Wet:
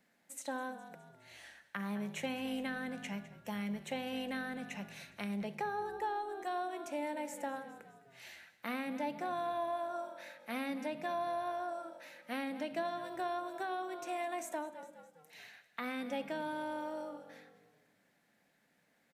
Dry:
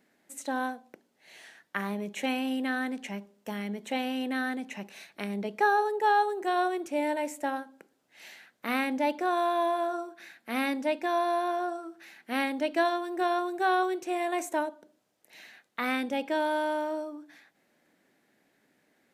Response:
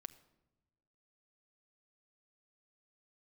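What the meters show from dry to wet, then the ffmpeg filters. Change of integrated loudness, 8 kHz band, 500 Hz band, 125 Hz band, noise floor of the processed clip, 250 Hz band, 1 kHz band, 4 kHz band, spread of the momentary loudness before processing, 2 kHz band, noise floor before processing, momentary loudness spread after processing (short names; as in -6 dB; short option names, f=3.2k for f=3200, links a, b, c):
-10.0 dB, -5.5 dB, -9.5 dB, n/a, -74 dBFS, -8.5 dB, -10.0 dB, -8.5 dB, 14 LU, -10.5 dB, -72 dBFS, 15 LU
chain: -filter_complex "[0:a]equalizer=f=350:w=3.6:g=-11,asplit=5[a][b][c][d][e];[b]adelay=206,afreqshift=-47,volume=-17.5dB[f];[c]adelay=412,afreqshift=-94,volume=-23.9dB[g];[d]adelay=618,afreqshift=-141,volume=-30.3dB[h];[e]adelay=824,afreqshift=-188,volume=-36.6dB[i];[a][f][g][h][i]amix=inputs=5:normalize=0,acrossover=split=440[j][k];[k]acompressor=threshold=-35dB:ratio=6[l];[j][l]amix=inputs=2:normalize=0[m];[1:a]atrim=start_sample=2205[n];[m][n]afir=irnorm=-1:irlink=0,volume=2dB"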